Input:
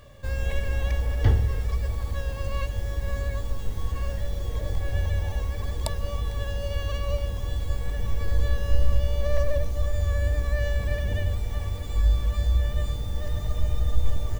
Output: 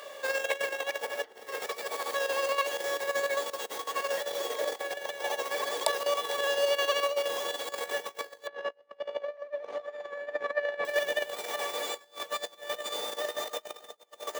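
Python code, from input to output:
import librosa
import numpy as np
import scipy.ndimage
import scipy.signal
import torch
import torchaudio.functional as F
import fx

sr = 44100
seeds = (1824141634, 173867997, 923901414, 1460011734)

y = fx.lowpass(x, sr, hz=2200.0, slope=12, at=(8.47, 10.85))
y = fx.over_compress(y, sr, threshold_db=-27.0, ratio=-0.5)
y = scipy.signal.sosfilt(scipy.signal.butter(4, 440.0, 'highpass', fs=sr, output='sos'), y)
y = y * librosa.db_to_amplitude(6.5)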